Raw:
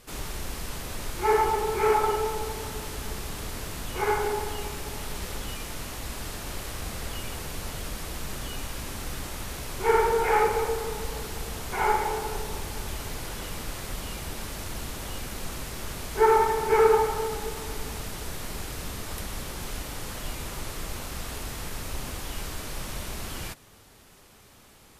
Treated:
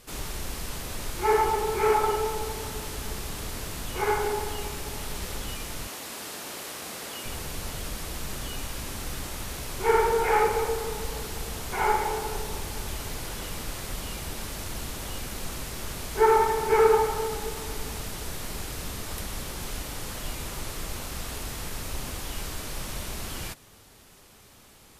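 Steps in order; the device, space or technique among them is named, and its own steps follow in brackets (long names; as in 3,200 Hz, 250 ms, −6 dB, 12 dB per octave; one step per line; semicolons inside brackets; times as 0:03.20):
exciter from parts (in parallel at −12.5 dB: high-pass filter 2,200 Hz + soft clipping −35 dBFS, distortion −14 dB)
0:05.87–0:07.26: on the sum: high-pass filter 250 Hz 12 dB per octave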